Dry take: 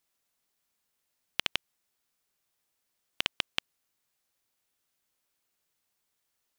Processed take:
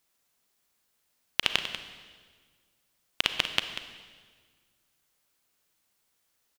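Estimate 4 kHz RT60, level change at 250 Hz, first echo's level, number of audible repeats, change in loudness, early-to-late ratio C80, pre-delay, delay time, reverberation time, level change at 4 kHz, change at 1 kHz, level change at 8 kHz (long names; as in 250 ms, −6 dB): 1.5 s, +5.5 dB, −11.5 dB, 1, +4.0 dB, 7.5 dB, 33 ms, 191 ms, 1.6 s, +5.5 dB, +5.5 dB, +5.5 dB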